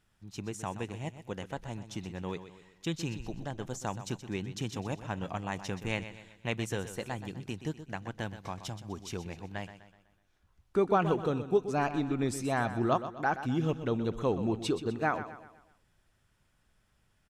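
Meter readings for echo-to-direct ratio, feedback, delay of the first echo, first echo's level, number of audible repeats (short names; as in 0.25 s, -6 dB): -11.0 dB, 45%, 0.125 s, -12.0 dB, 4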